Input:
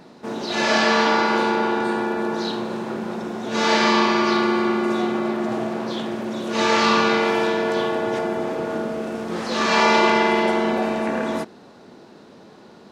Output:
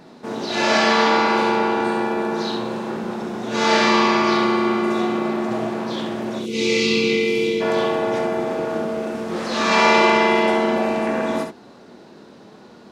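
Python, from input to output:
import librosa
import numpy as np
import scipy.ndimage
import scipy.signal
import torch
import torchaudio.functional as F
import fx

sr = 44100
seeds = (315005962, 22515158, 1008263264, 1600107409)

p1 = fx.spec_box(x, sr, start_s=6.39, length_s=1.22, low_hz=530.0, high_hz=2000.0, gain_db=-23)
y = p1 + fx.room_early_taps(p1, sr, ms=(25, 67), db=(-10.0, -6.0), dry=0)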